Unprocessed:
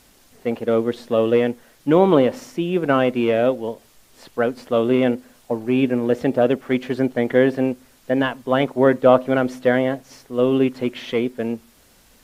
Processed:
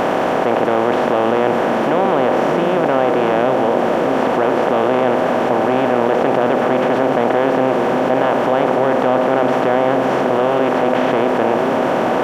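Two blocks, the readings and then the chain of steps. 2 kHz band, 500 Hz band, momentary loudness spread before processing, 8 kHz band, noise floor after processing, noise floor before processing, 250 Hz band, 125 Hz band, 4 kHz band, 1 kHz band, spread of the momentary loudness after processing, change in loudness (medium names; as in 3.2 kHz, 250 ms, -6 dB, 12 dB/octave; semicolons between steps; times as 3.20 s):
+6.5 dB, +4.5 dB, 12 LU, no reading, -17 dBFS, -54 dBFS, +2.0 dB, +1.0 dB, +4.5 dB, +11.5 dB, 1 LU, +4.5 dB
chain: spectral levelling over time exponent 0.2; peaking EQ 840 Hz +10 dB 0.58 oct; on a send: repeats whose band climbs or falls 590 ms, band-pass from 180 Hz, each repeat 0.7 oct, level -3 dB; on the sum: level flattener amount 70%; trim -11 dB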